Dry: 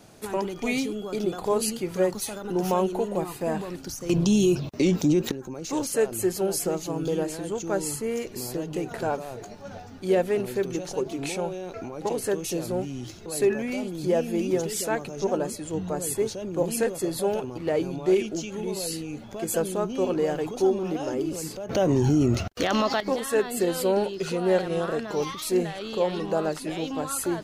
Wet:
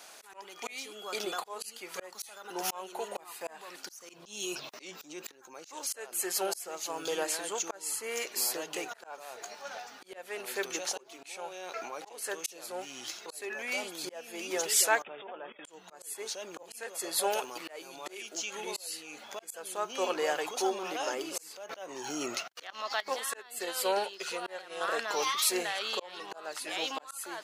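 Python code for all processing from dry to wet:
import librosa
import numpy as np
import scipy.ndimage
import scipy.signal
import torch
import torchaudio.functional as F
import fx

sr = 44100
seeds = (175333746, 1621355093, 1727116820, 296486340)

y = fx.chain(x, sr, fx.brickwall_lowpass(high_hz=3700.0),
    fx.level_steps(step_db=19), at=(15.02, 15.65))
y = fx.chain(y, sr, fx.highpass(hz=110.0, slope=12),
    fx.high_shelf(hz=7300.0, db=10.5), at=(17.32, 18.35))
y = fx.chain(y, sr, fx.highpass(hz=130.0, slope=12),
    fx.upward_expand(threshold_db=-40.0, expansion=1.5), at=(21.79, 24.81))
y = scipy.signal.sosfilt(scipy.signal.butter(2, 970.0, 'highpass', fs=sr, output='sos'), y)
y = fx.auto_swell(y, sr, attack_ms=513.0)
y = y * librosa.db_to_amplitude(6.0)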